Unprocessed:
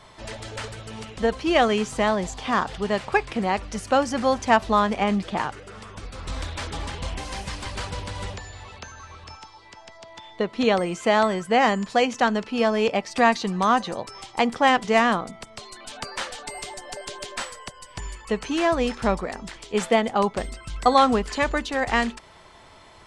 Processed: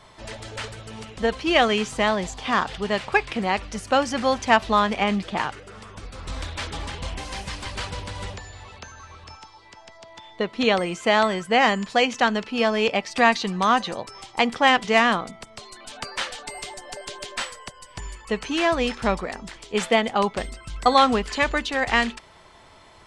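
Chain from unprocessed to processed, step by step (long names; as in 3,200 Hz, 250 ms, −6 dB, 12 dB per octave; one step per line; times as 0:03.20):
dynamic equaliser 2,900 Hz, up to +6 dB, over −38 dBFS, Q 0.7
level −1 dB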